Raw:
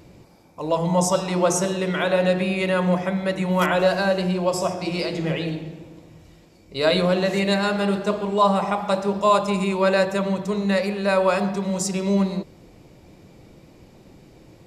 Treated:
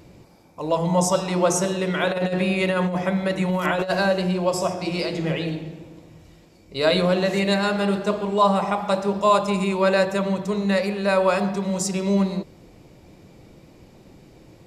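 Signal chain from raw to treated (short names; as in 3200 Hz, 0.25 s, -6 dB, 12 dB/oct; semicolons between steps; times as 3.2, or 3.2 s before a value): 2.03–4.07 negative-ratio compressor -21 dBFS, ratio -0.5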